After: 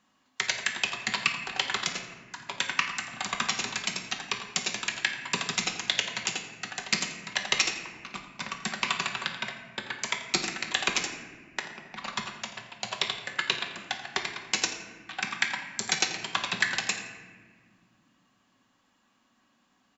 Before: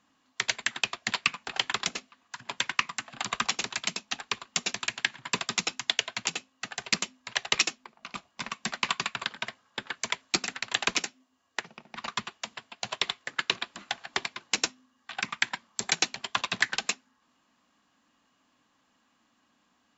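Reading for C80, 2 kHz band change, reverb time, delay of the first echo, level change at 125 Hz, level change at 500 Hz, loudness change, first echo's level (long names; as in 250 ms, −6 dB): 8.0 dB, +1.0 dB, 1.7 s, 85 ms, +2.5 dB, +1.0 dB, +0.5 dB, −14.5 dB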